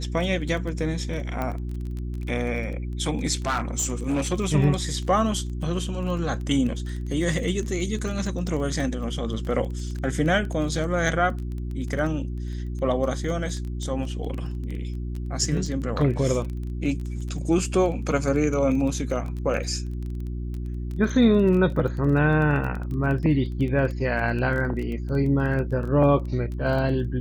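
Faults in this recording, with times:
crackle 17/s -30 dBFS
hum 60 Hz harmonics 6 -30 dBFS
1.42 pop -16 dBFS
3.45–4.34 clipped -20 dBFS

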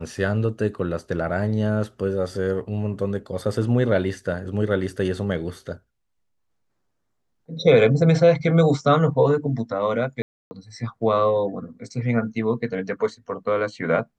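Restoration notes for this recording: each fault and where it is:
10.22–10.51 gap 0.29 s

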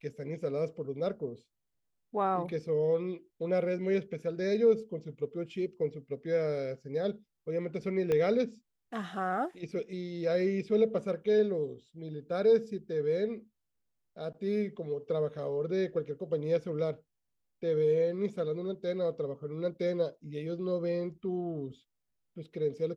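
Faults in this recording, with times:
8.12 pop -19 dBFS

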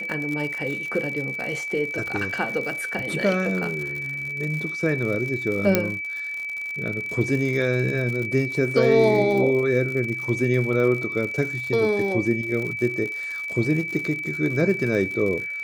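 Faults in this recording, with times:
crackle 85/s -29 dBFS
tone 2300 Hz -28 dBFS
5.75 pop -3 dBFS

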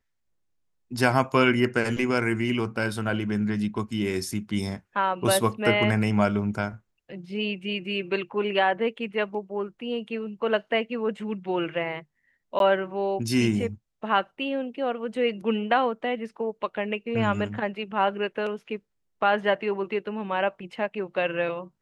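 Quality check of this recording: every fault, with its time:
12.59–12.6 gap 12 ms

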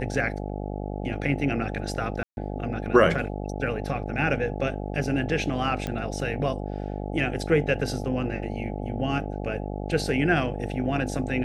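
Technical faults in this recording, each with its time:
buzz 50 Hz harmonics 17 -32 dBFS
2.23–2.37 gap 0.141 s
5.87 pop -17 dBFS

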